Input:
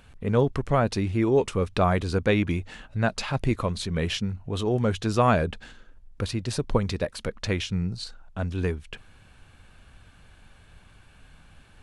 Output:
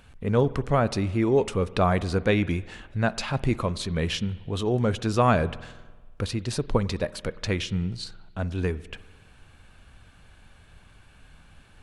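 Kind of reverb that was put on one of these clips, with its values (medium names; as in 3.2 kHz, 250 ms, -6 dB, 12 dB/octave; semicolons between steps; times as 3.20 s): spring tank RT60 1.4 s, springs 49 ms, chirp 45 ms, DRR 17.5 dB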